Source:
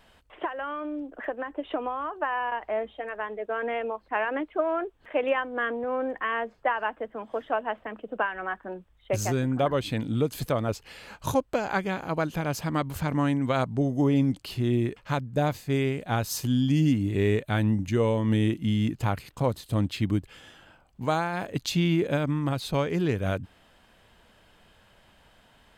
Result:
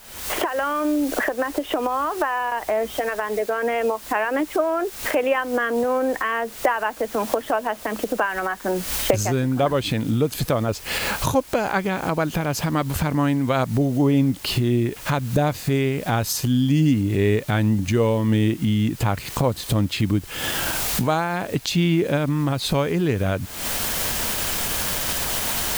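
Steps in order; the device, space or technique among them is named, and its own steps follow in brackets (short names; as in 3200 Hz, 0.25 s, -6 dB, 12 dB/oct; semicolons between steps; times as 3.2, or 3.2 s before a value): cheap recorder with automatic gain (white noise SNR 25 dB; recorder AGC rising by 71 dB/s); gain +4.5 dB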